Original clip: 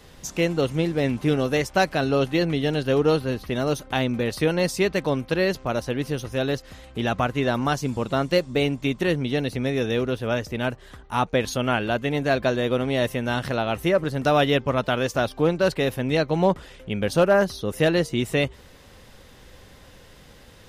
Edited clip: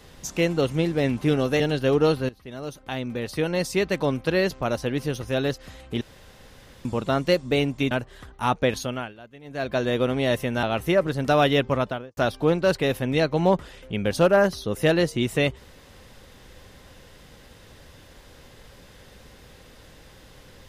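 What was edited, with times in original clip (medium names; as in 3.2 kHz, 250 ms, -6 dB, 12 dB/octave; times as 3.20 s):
1.60–2.64 s: delete
3.33–5.14 s: fade in, from -17.5 dB
7.05–7.89 s: room tone
8.95–10.62 s: delete
11.40–12.60 s: dip -21 dB, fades 0.45 s
13.34–13.60 s: delete
14.70–15.14 s: studio fade out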